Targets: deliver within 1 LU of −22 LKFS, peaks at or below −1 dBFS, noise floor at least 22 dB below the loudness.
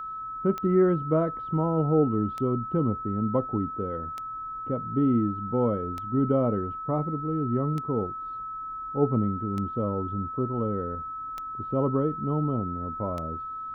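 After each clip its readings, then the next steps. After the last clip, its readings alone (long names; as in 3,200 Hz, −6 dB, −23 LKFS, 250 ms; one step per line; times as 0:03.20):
number of clicks 8; interfering tone 1,300 Hz; level of the tone −33 dBFS; integrated loudness −27.5 LKFS; sample peak −10.5 dBFS; target loudness −22.0 LKFS
→ click removal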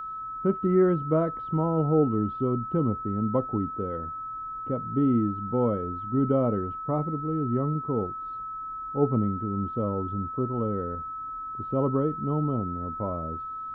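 number of clicks 0; interfering tone 1,300 Hz; level of the tone −33 dBFS
→ notch filter 1,300 Hz, Q 30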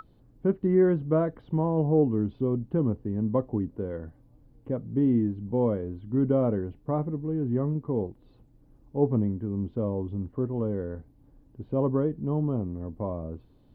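interfering tone none found; integrated loudness −28.0 LKFS; sample peak −10.5 dBFS; target loudness −22.0 LKFS
→ level +6 dB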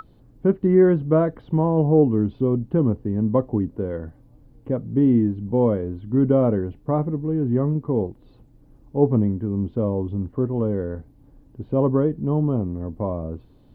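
integrated loudness −22.0 LKFS; sample peak −4.5 dBFS; background noise floor −53 dBFS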